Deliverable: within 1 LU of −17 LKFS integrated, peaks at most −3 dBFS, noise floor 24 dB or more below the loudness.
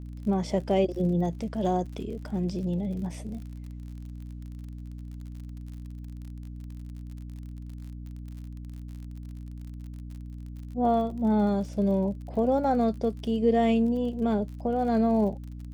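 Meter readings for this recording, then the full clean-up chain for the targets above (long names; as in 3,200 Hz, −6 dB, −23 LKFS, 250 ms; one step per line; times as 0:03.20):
crackle rate 46 per second; mains hum 60 Hz; hum harmonics up to 300 Hz; level of the hum −37 dBFS; integrated loudness −27.0 LKFS; sample peak −12.0 dBFS; target loudness −17.0 LKFS
→ click removal
hum removal 60 Hz, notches 5
level +10 dB
brickwall limiter −3 dBFS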